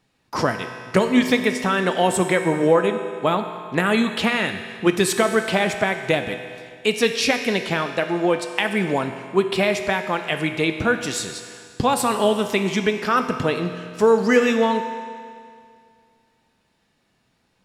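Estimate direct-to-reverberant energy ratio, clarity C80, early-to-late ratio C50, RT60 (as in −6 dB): 6.0 dB, 8.5 dB, 7.5 dB, 2.2 s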